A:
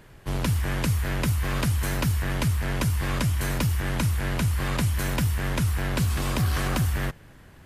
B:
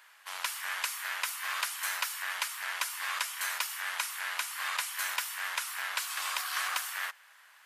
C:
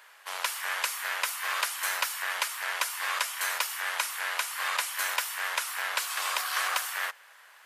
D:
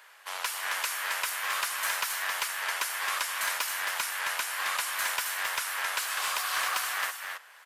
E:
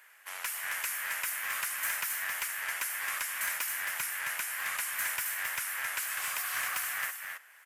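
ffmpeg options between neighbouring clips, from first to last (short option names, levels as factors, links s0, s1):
-af "highpass=f=1000:w=0.5412,highpass=f=1000:w=1.3066"
-af "equalizer=f=480:w=1.2:g=9,volume=1.41"
-filter_complex "[0:a]acrossover=split=460[s0][s1];[s0]alimiter=level_in=33.5:limit=0.0631:level=0:latency=1,volume=0.0299[s2];[s1]asoftclip=type=tanh:threshold=0.0891[s3];[s2][s3]amix=inputs=2:normalize=0,aecho=1:1:268:0.562"
-af "equalizer=f=125:t=o:w=1:g=9,equalizer=f=500:t=o:w=1:g=-5,equalizer=f=1000:t=o:w=1:g=-6,equalizer=f=2000:t=o:w=1:g=5,equalizer=f=4000:t=o:w=1:g=-9,equalizer=f=16000:t=o:w=1:g=7,volume=0.668"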